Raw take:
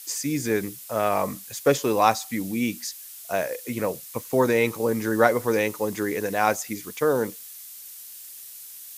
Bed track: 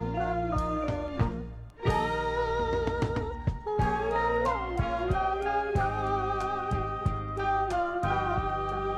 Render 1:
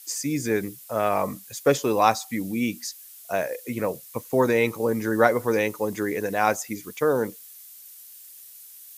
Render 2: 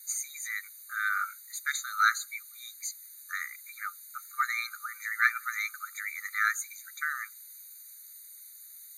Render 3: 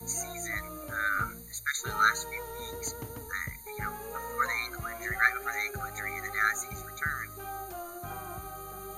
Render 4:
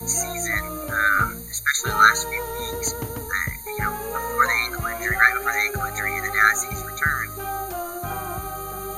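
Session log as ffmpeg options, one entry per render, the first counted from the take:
-af "afftdn=nr=6:nf=-42"
-af "afreqshift=290,afftfilt=real='re*eq(mod(floor(b*sr/1024/1200),2),1)':imag='im*eq(mod(floor(b*sr/1024/1200),2),1)':win_size=1024:overlap=0.75"
-filter_complex "[1:a]volume=-12.5dB[a];[0:a][a]amix=inputs=2:normalize=0"
-af "volume=10.5dB,alimiter=limit=-1dB:level=0:latency=1"

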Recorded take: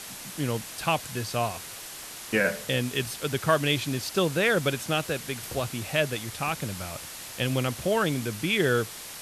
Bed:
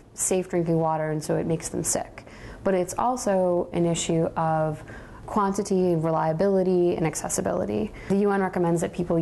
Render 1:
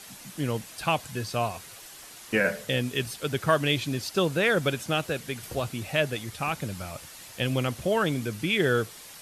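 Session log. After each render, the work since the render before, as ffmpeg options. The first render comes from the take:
-af "afftdn=nr=7:nf=-41"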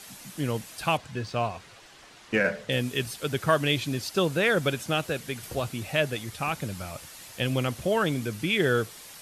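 -filter_complex "[0:a]asettb=1/sr,asplit=3[a][b][c];[a]atrim=end=0.974[d];[b]atrim=start=0.97:end=2.72,asetpts=PTS-STARTPTS,afade=t=in:d=0.004:c=qsin,afade=t=out:st=1.746:d=0.004:c=qsin,adynamicsmooth=sensitivity=2.5:basefreq=4.7k[e];[c]atrim=start=2.716[f];[d][e]acrossfade=d=0.004:c1=hsin:c2=qsin[g];[g][f]acrossfade=d=0.004:c1=qsin:c2=hsin"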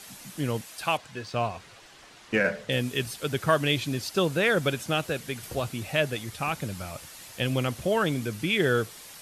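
-filter_complex "[0:a]asettb=1/sr,asplit=3[a][b][c];[a]atrim=end=0.614[d];[b]atrim=start=0.61:end=1.34,asetpts=PTS-STARTPTS,afade=t=in:d=0.004:c=qsin,afade=t=out:st=0.726:d=0.004:c=qsin,lowshelf=f=250:g=-10.5[e];[c]atrim=start=1.336[f];[d][e]acrossfade=d=0.004:c1=hsin:c2=qsin[g];[g][f]acrossfade=d=0.004:c1=qsin:c2=hsin"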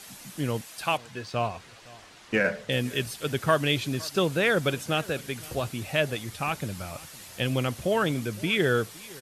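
-af "aecho=1:1:512:0.0794"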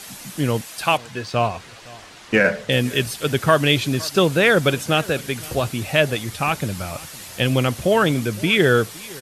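-af "volume=8dB,alimiter=limit=-3dB:level=0:latency=1"

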